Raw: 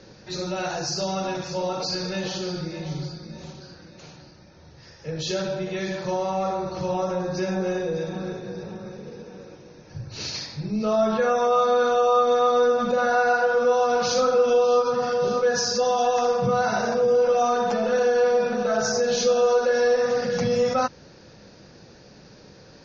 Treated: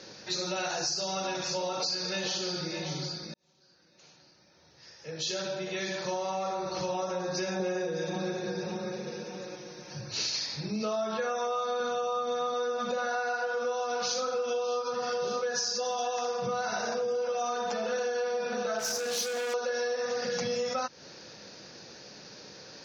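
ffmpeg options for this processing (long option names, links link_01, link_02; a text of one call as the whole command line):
ffmpeg -i in.wav -filter_complex "[0:a]asettb=1/sr,asplit=3[link_01][link_02][link_03];[link_01]atrim=end=7.594[link_04];[link_02]atrim=start=7.59:end=10.11,asetpts=PTS-STARTPTS,afade=type=in:duration=0.004:curve=qsin,afade=type=out:start_time=2.516:duration=0.004:curve=qsin,aecho=1:1:5.6:0.94,atrim=end_sample=111132[link_05];[link_03]atrim=start=10.106[link_06];[link_04][link_05]acrossfade=duration=0.004:curve1=hsin:curve2=qsin[link_07];[link_07][link_06]acrossfade=duration=0.004:curve1=qsin:curve2=hsin,asettb=1/sr,asplit=3[link_08][link_09][link_10];[link_08]atrim=end=11.804[link_11];[link_09]atrim=start=11.8:end=12.54,asetpts=PTS-STARTPTS,afade=type=in:duration=0.004:curve=qsin,afade=type=out:start_time=0.736:duration=0.004:curve=qsin,equalizer=frequency=170:width_type=o:width=0.91:gain=13[link_12];[link_10]atrim=start=12.536[link_13];[link_11][link_12]acrossfade=duration=0.004:curve1=hsin:curve2=qsin[link_14];[link_14][link_13]acrossfade=duration=0.004:curve1=qsin:curve2=hsin,asettb=1/sr,asplit=3[link_15][link_16][link_17];[link_15]atrim=end=18.794[link_18];[link_16]atrim=start=18.79:end=19.54,asetpts=PTS-STARTPTS,afade=type=in:duration=0.004:curve=qsin,afade=type=out:start_time=0.746:duration=0.004:curve=qsin,asoftclip=type=hard:threshold=-24dB[link_19];[link_17]atrim=start=19.536[link_20];[link_18][link_19]acrossfade=duration=0.004:curve1=hsin:curve2=qsin[link_21];[link_21][link_20]acrossfade=duration=0.004:curve1=qsin:curve2=hsin,asplit=2[link_22][link_23];[link_22]atrim=end=3.34,asetpts=PTS-STARTPTS,afade=type=out:start_time=3.336:duration=0.004:curve=hsin[link_24];[link_23]atrim=start=3.34,asetpts=PTS-STARTPTS,afade=type=in:duration=3.66[link_25];[link_24][link_25]concat=n=2:v=0:a=1,highpass=frequency=300:poles=1,highshelf=frequency=2500:gain=8,acompressor=threshold=-29dB:ratio=6" out.wav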